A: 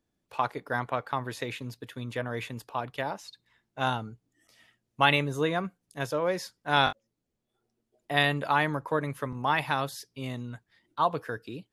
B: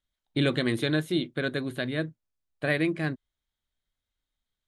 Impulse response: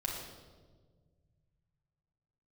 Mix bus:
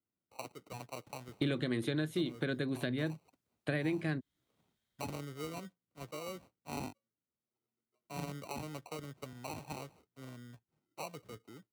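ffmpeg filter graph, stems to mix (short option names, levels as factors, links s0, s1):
-filter_complex "[0:a]aemphasis=mode=reproduction:type=75fm,acrusher=samples=26:mix=1:aa=0.000001,volume=0.2[s0];[1:a]adelay=1050,volume=1.33[s1];[s0][s1]amix=inputs=2:normalize=0,highpass=84,acrossover=split=410|1700[s2][s3][s4];[s2]acompressor=threshold=0.02:ratio=4[s5];[s3]acompressor=threshold=0.00631:ratio=4[s6];[s4]acompressor=threshold=0.00562:ratio=4[s7];[s5][s6][s7]amix=inputs=3:normalize=0"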